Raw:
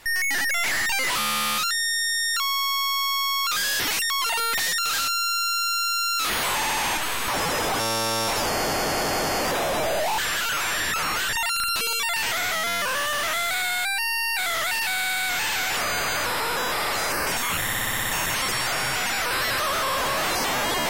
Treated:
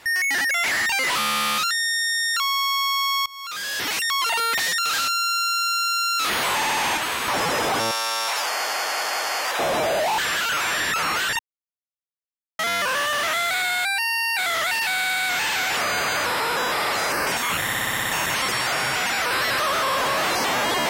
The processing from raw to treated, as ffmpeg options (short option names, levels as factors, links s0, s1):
-filter_complex "[0:a]asettb=1/sr,asplit=3[s0][s1][s2];[s0]atrim=end=7.914[s3];[s1]atrim=start=7.91:end=9.59,asetpts=PTS-STARTPTS,afade=t=in:d=0.004:c=qsin,afade=t=out:st=1.676:d=0.004:c=qsin,highpass=890[s4];[s2]atrim=start=9.586[s5];[s3][s4]acrossfade=d=0.004:c1=hsin:c2=qsin[s6];[s6][s5]acrossfade=d=0.004:c1=qsin:c2=hsin,asplit=4[s7][s8][s9][s10];[s7]atrim=end=3.26,asetpts=PTS-STARTPTS,afade=t=out:st=3.256:d=0.004:c=hsin:silence=0.0707946[s11];[s8]atrim=start=3.26:end=11.39,asetpts=PTS-STARTPTS,afade=t=in:d=0.83:silence=0.0707946,afade=t=out:st=8.126:d=0.004:c=hsin[s12];[s9]atrim=start=11.39:end=12.59,asetpts=PTS-STARTPTS,volume=0[s13];[s10]atrim=start=12.59,asetpts=PTS-STARTPTS,afade=t=in:d=0.004:c=hsin[s14];[s11][s12][s13][s14]concat=n=4:v=0:a=1,highpass=f=140:p=1,highshelf=f=6500:g=-6,volume=1.41"